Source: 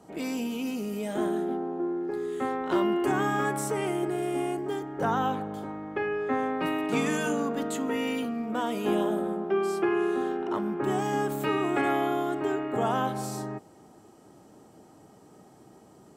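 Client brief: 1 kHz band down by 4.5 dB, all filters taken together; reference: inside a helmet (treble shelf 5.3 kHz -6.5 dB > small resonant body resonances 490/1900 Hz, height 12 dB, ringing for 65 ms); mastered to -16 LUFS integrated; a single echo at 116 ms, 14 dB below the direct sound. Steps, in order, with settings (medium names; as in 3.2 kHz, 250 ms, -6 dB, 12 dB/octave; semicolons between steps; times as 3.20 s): peaking EQ 1 kHz -6 dB; treble shelf 5.3 kHz -6.5 dB; delay 116 ms -14 dB; small resonant body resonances 490/1900 Hz, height 12 dB, ringing for 65 ms; trim +12.5 dB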